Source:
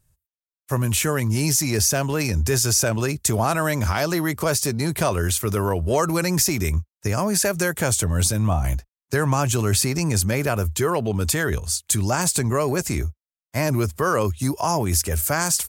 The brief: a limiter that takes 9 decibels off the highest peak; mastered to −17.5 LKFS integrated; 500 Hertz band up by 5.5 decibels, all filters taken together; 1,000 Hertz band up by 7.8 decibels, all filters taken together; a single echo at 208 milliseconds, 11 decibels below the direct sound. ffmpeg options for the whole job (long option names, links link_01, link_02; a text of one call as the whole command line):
ffmpeg -i in.wav -af "equalizer=frequency=500:width_type=o:gain=4.5,equalizer=frequency=1000:width_type=o:gain=8.5,alimiter=limit=-12dB:level=0:latency=1,aecho=1:1:208:0.282,volume=4.5dB" out.wav